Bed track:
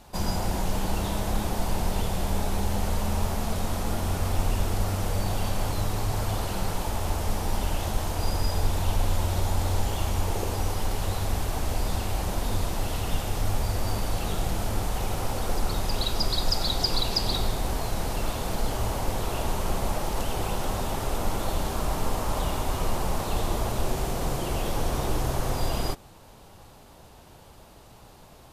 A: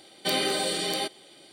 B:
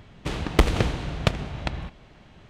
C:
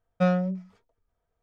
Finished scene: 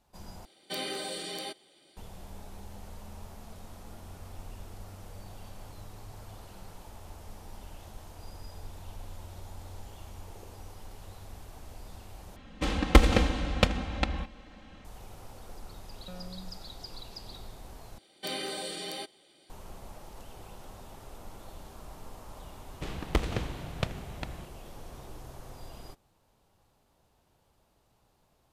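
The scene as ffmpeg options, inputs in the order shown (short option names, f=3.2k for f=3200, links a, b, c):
-filter_complex "[1:a]asplit=2[a][b];[2:a]asplit=2[c][d];[0:a]volume=-19dB[e];[c]aecho=1:1:3.8:0.85[f];[3:a]acompressor=threshold=-44dB:ratio=6:attack=3.2:release=140:knee=1:detection=peak[g];[b]equalizer=f=78:w=1.5:g=2[h];[e]asplit=4[i][j][k][l];[i]atrim=end=0.454[m];[a]atrim=end=1.52,asetpts=PTS-STARTPTS,volume=-9.5dB[n];[j]atrim=start=1.966:end=12.364[o];[f]atrim=end=2.49,asetpts=PTS-STARTPTS,volume=-2dB[p];[k]atrim=start=14.846:end=17.984[q];[h]atrim=end=1.52,asetpts=PTS-STARTPTS,volume=-9.5dB[r];[l]atrim=start=19.496[s];[g]atrim=end=1.42,asetpts=PTS-STARTPTS,volume=-1dB,afade=t=in:d=0.004:c=hsin,afade=t=out:st=1.416:d=0.004:c=hsin,adelay=700308S[t];[d]atrim=end=2.49,asetpts=PTS-STARTPTS,volume=-9.5dB,afade=t=in:d=0.004:c=hsin,afade=t=out:st=2.486:d=0.004:c=hsin,adelay=22560[u];[m][n]acrossfade=d=0.004:c1=hsin:c2=hsin[v];[v][o]acrossfade=d=0.004:c1=hsin:c2=hsin[w];[w][p]acrossfade=d=0.004:c1=hsin:c2=hsin[x];[x][q]acrossfade=d=0.004:c1=hsin:c2=hsin[y];[y][r]acrossfade=d=0.004:c1=hsin:c2=hsin[z];[z][s]acrossfade=d=0.004:c1=hsin:c2=hsin[aa];[aa][t][u]amix=inputs=3:normalize=0"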